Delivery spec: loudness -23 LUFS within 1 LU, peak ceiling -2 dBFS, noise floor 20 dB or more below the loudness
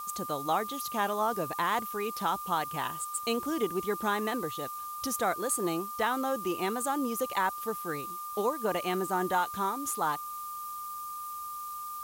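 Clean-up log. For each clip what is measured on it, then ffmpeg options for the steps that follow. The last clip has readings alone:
steady tone 1.2 kHz; tone level -37 dBFS; noise floor -39 dBFS; noise floor target -52 dBFS; loudness -32.0 LUFS; peak level -16.5 dBFS; loudness target -23.0 LUFS
-> -af "bandreject=f=1200:w=30"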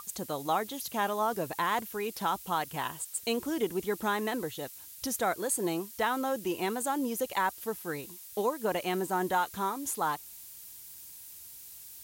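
steady tone not found; noise floor -48 dBFS; noise floor target -52 dBFS
-> -af "afftdn=nr=6:nf=-48"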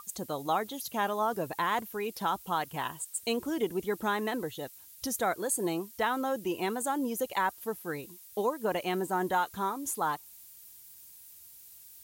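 noise floor -53 dBFS; loudness -32.5 LUFS; peak level -16.5 dBFS; loudness target -23.0 LUFS
-> -af "volume=2.99"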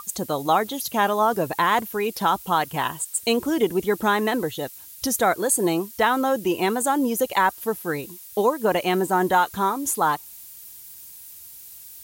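loudness -22.5 LUFS; peak level -7.0 dBFS; noise floor -43 dBFS

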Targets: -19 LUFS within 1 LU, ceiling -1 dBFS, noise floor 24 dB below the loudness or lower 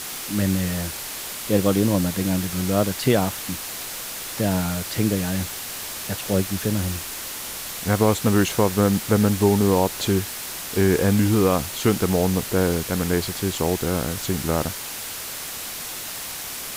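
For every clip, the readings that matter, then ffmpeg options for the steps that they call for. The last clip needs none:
noise floor -33 dBFS; noise floor target -47 dBFS; loudness -23.0 LUFS; peak level -5.0 dBFS; loudness target -19.0 LUFS
-> -af "afftdn=nr=14:nf=-33"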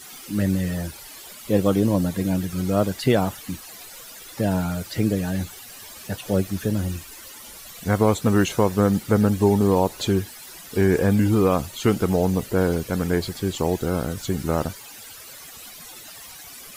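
noise floor -42 dBFS; noise floor target -47 dBFS
-> -af "afftdn=nr=6:nf=-42"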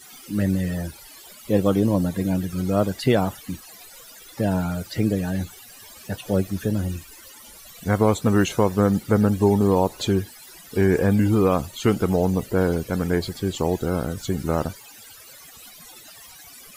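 noise floor -45 dBFS; noise floor target -47 dBFS
-> -af "afftdn=nr=6:nf=-45"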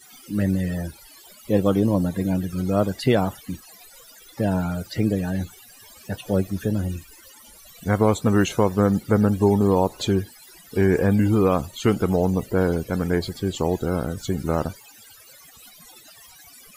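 noise floor -49 dBFS; loudness -22.5 LUFS; peak level -5.5 dBFS; loudness target -19.0 LUFS
-> -af "volume=1.5"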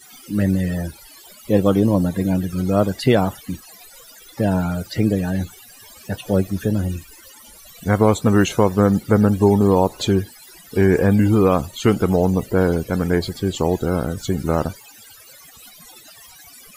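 loudness -19.0 LUFS; peak level -2.0 dBFS; noise floor -45 dBFS

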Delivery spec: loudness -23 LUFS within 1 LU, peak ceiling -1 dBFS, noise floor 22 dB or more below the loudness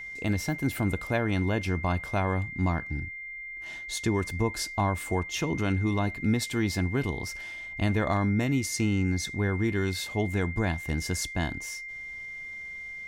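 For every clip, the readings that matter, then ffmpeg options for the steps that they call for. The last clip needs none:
steady tone 2.1 kHz; tone level -37 dBFS; loudness -29.5 LUFS; peak level -14.0 dBFS; loudness target -23.0 LUFS
-> -af "bandreject=f=2100:w=30"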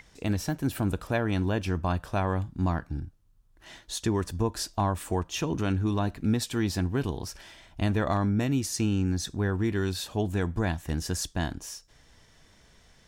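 steady tone not found; loudness -29.5 LUFS; peak level -14.5 dBFS; loudness target -23.0 LUFS
-> -af "volume=2.11"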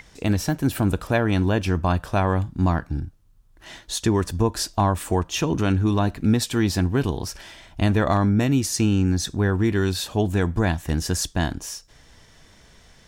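loudness -23.0 LUFS; peak level -8.0 dBFS; noise floor -53 dBFS

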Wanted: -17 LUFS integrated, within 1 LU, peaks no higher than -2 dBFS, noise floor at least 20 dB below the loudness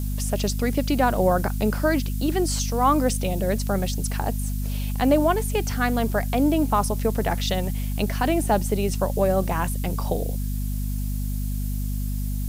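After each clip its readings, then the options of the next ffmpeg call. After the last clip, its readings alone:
hum 50 Hz; highest harmonic 250 Hz; hum level -24 dBFS; noise floor -26 dBFS; noise floor target -44 dBFS; loudness -24.0 LUFS; peak level -6.5 dBFS; loudness target -17.0 LUFS
-> -af "bandreject=f=50:t=h:w=4,bandreject=f=100:t=h:w=4,bandreject=f=150:t=h:w=4,bandreject=f=200:t=h:w=4,bandreject=f=250:t=h:w=4"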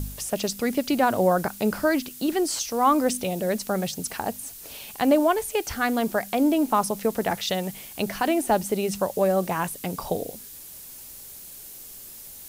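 hum not found; noise floor -43 dBFS; noise floor target -45 dBFS
-> -af "afftdn=nr=6:nf=-43"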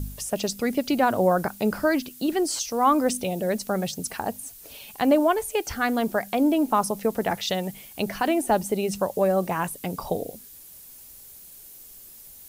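noise floor -46 dBFS; loudness -25.0 LUFS; peak level -7.5 dBFS; loudness target -17.0 LUFS
-> -af "volume=2.51,alimiter=limit=0.794:level=0:latency=1"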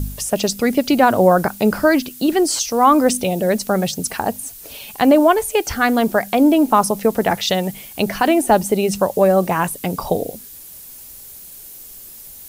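loudness -17.0 LUFS; peak level -2.0 dBFS; noise floor -38 dBFS

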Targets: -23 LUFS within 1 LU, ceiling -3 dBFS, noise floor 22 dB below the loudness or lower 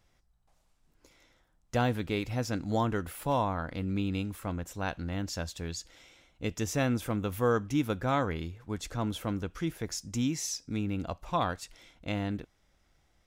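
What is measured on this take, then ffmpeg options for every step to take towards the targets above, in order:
loudness -33.0 LUFS; peak level -14.5 dBFS; loudness target -23.0 LUFS
-> -af "volume=3.16"

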